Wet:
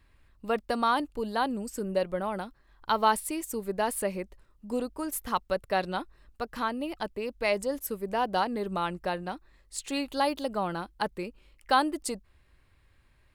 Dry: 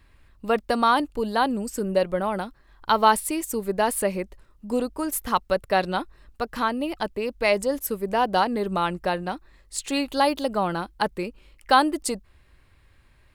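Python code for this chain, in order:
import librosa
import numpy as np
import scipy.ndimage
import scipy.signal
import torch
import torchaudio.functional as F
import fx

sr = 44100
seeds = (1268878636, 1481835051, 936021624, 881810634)

y = F.gain(torch.from_numpy(x), -6.0).numpy()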